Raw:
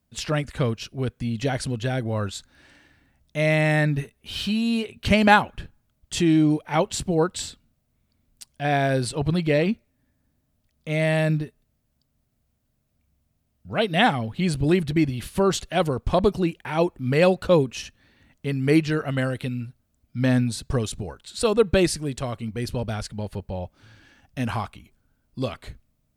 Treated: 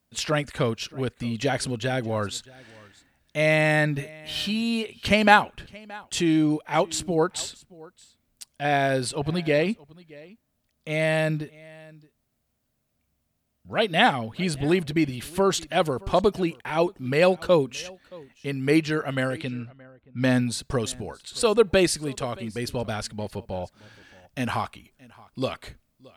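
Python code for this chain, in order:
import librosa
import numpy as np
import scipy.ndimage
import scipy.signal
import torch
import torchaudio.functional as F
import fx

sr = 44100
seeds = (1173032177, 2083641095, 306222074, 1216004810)

p1 = fx.low_shelf(x, sr, hz=190.0, db=-9.5)
p2 = p1 + 10.0 ** (-23.0 / 20.0) * np.pad(p1, (int(623 * sr / 1000.0), 0))[:len(p1)]
p3 = fx.env_lowpass(p2, sr, base_hz=1100.0, full_db=-24.5, at=(19.27, 20.58), fade=0.02)
p4 = fx.rider(p3, sr, range_db=3, speed_s=2.0)
p5 = p3 + (p4 * 10.0 ** (-1.0 / 20.0))
y = p5 * 10.0 ** (-4.5 / 20.0)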